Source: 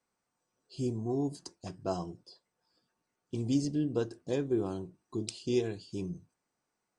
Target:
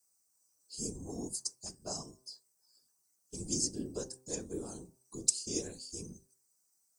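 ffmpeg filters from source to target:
-af "afftfilt=real='hypot(re,im)*cos(2*PI*random(0))':imag='hypot(re,im)*sin(2*PI*random(1))':win_size=512:overlap=0.75,bandreject=f=129.3:t=h:w=4,bandreject=f=258.6:t=h:w=4,bandreject=f=387.9:t=h:w=4,bandreject=f=517.2:t=h:w=4,bandreject=f=646.5:t=h:w=4,bandreject=f=775.8:t=h:w=4,bandreject=f=905.1:t=h:w=4,bandreject=f=1034.4:t=h:w=4,bandreject=f=1163.7:t=h:w=4,aexciter=amount=15.5:drive=5.8:freq=5000,volume=0.668"

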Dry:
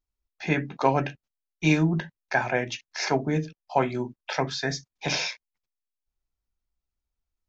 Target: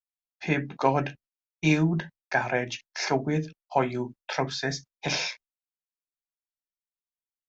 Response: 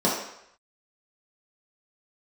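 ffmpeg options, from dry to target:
-af "agate=range=0.0224:threshold=0.01:ratio=3:detection=peak,volume=0.891"

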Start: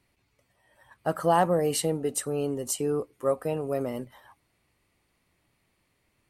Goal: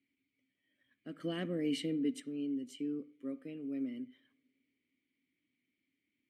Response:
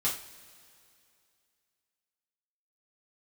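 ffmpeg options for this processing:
-filter_complex "[0:a]asplit=3[s0][s1][s2];[s0]bandpass=f=270:t=q:w=8,volume=1[s3];[s1]bandpass=f=2290:t=q:w=8,volume=0.501[s4];[s2]bandpass=f=3010:t=q:w=8,volume=0.355[s5];[s3][s4][s5]amix=inputs=3:normalize=0,asettb=1/sr,asplit=3[s6][s7][s8];[s6]atrim=end=1.204[s9];[s7]atrim=start=1.2:end=2.2,asetpts=PTS-STARTPTS,afade=t=in:d=0.004:c=qsin,afade=t=out:st=0.996:d=0.004:c=qsin,acontrast=61[s10];[s8]atrim=start=2.196[s11];[s9][s10]acrossfade=d=0.004:c1=hsin:c2=qsin[s12];[s12][s11]acrossfade=d=0.004:c1=qsin:c2=hsin,asplit=2[s13][s14];[1:a]atrim=start_sample=2205,lowpass=3300,adelay=61[s15];[s14][s15]afir=irnorm=-1:irlink=0,volume=0.0501[s16];[s13][s16]amix=inputs=2:normalize=0"

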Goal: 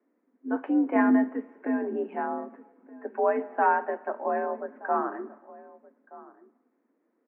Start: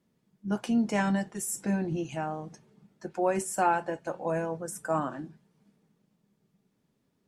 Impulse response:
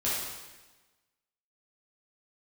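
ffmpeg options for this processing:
-filter_complex "[0:a]asettb=1/sr,asplit=3[s0][s1][s2];[s0]atrim=end=0.954[s3];[s1]atrim=start=0.95:end=1.53,asetpts=PTS-STARTPTS,afade=t=in:d=0.004:c=qsin,afade=t=out:st=0.576:d=0.004:c=qsin,lowshelf=f=320:g=9.5[s4];[s2]atrim=start=1.526[s5];[s3][s4]acrossfade=d=0.004:c1=hsin:c2=qsin[s6];[s6][s5]acrossfade=d=0.004:c1=qsin:c2=hsin,asplit=2[s7][s8];[s8]adelay=1224,volume=0.112,highshelf=f=4000:g=-27.6[s9];[s7][s9]amix=inputs=2:normalize=0,asplit=2[s10][s11];[1:a]atrim=start_sample=2205,adelay=45[s12];[s11][s12]afir=irnorm=-1:irlink=0,volume=0.0447[s13];[s10][s13]amix=inputs=2:normalize=0,highpass=f=190:t=q:w=0.5412,highpass=f=190:t=q:w=1.307,lowpass=f=2000:t=q:w=0.5176,lowpass=f=2000:t=q:w=0.7071,lowpass=f=2000:t=q:w=1.932,afreqshift=62,volume=1.33"

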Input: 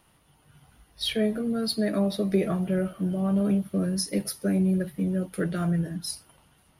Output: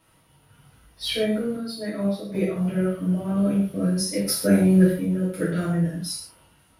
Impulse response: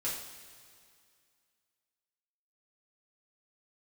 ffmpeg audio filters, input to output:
-filter_complex "[0:a]asettb=1/sr,asplit=3[s0][s1][s2];[s0]atrim=end=1.564[s3];[s1]atrim=start=1.56:end=2.56,asetpts=PTS-STARTPTS,afade=t=in:d=0.004:c=qsin,afade=t=out:st=0.996:d=0.004:c=qsin,agate=range=0.355:threshold=0.0708:ratio=16:detection=peak[s4];[s2]atrim=start=2.556[s5];[s3][s4]acrossfade=d=0.004:c1=hsin:c2=qsin[s6];[s6][s5]acrossfade=d=0.004:c1=qsin:c2=hsin,asettb=1/sr,asplit=3[s7][s8][s9];[s7]atrim=end=4.284[s10];[s8]atrim=start=4.28:end=4.92,asetpts=PTS-STARTPTS,afade=t=in:d=0.004:c=qsin,afade=t=out:st=0.636:d=0.004:c=qsin,acontrast=83[s11];[s9]atrim=start=4.916[s12];[s10][s11]acrossfade=d=0.004:c1=hsin:c2=qsin[s13];[s13][s12]acrossfade=d=0.004:c1=qsin:c2=hsin[s14];[1:a]atrim=start_sample=2205,afade=t=out:st=0.21:d=0.01,atrim=end_sample=9702[s15];[s14][s15]afir=irnorm=-1:irlink=0"

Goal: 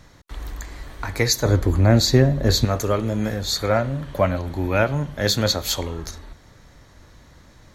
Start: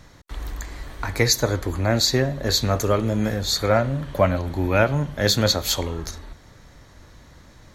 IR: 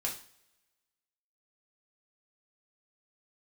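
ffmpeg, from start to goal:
-filter_complex "[0:a]asettb=1/sr,asplit=3[s0][s1][s2];[s0]atrim=end=1.454[s3];[s1]atrim=start=1.45:end=2.65,asetpts=PTS-STARTPTS,afade=t=in:d=0.004:c=qsin,afade=t=out:st=1.196:d=0.004:c=qsin,lowshelf=f=450:g=9.5[s4];[s2]atrim=start=2.646[s5];[s3][s4]acrossfade=d=0.004:c1=hsin:c2=qsin[s6];[s6][s5]acrossfade=d=0.004:c1=qsin:c2=hsin,volume=0.891"

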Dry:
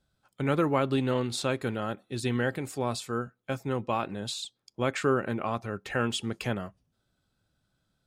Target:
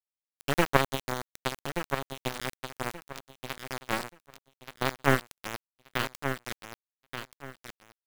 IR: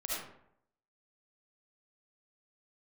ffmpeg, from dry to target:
-filter_complex "[0:a]aecho=1:1:5.4:0.58,aeval=exprs='0.266*(cos(1*acos(clip(val(0)/0.266,-1,1)))-cos(1*PI/2))+0.0944*(cos(3*acos(clip(val(0)/0.266,-1,1)))-cos(3*PI/2))':c=same,asplit=2[s0][s1];[s1]asoftclip=type=tanh:threshold=0.0447,volume=0.355[s2];[s0][s2]amix=inputs=2:normalize=0,acrusher=bits=3:dc=4:mix=0:aa=0.000001,aecho=1:1:1179|2358|3537:0.398|0.0916|0.0211,volume=2.37"

